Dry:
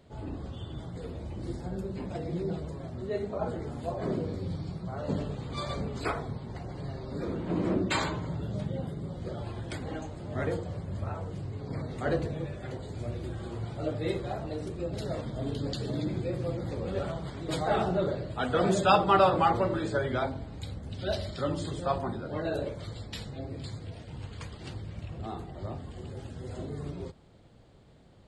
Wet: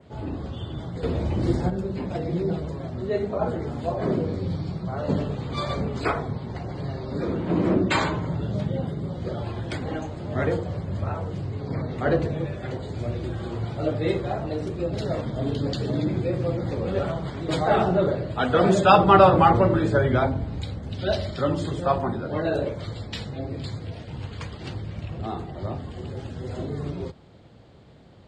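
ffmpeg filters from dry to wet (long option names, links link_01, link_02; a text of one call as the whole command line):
ffmpeg -i in.wav -filter_complex "[0:a]asettb=1/sr,asplit=3[link_01][link_02][link_03];[link_01]atrim=end=11.734[link_04];[link_02]atrim=start=11.73:end=12.2,asetpts=PTS-STARTPTS,afade=type=in:duration=0.004:curve=qsin,afade=type=out:start_time=0.466:duration=0.004:curve=qsin,highshelf=frequency=6200:gain=-10[link_05];[link_03]atrim=start=12.196[link_06];[link_04][link_05]acrossfade=duration=0.004:curve1=hsin:curve2=qsin[link_07];[link_07][link_06]acrossfade=duration=0.004:curve1=qsin:curve2=hsin,asettb=1/sr,asplit=3[link_08][link_09][link_10];[link_08]atrim=end=18.984[link_11];[link_09]atrim=start=18.98:end=20.62,asetpts=PTS-STARTPTS,afade=type=in:duration=0.004:curve=qsin,afade=type=out:start_time=1.636:duration=0.004:curve=qsin,lowshelf=frequency=200:gain=7[link_12];[link_10]atrim=start=20.616[link_13];[link_11][link_12]acrossfade=duration=0.004:curve1=hsin:curve2=qsin[link_14];[link_14][link_13]acrossfade=duration=0.004:curve1=qsin:curve2=hsin,asplit=3[link_15][link_16][link_17];[link_15]atrim=end=1.032[link_18];[link_16]atrim=start=1.028:end=1.702,asetpts=PTS-STARTPTS,volume=7dB[link_19];[link_17]atrim=start=1.698[link_20];[link_18][link_19]acrossfade=duration=0.004:curve1=hsin:curve2=hsin[link_21];[link_21][link_20]acrossfade=duration=0.004:curve1=hsin:curve2=hsin,highpass=57,adynamicequalizer=threshold=0.00178:dfrequency=4200:dqfactor=1.4:tfrequency=4200:tqfactor=1.4:attack=5:release=100:ratio=0.375:range=2.5:mode=cutabove:tftype=bell,lowpass=6100,volume=7dB" out.wav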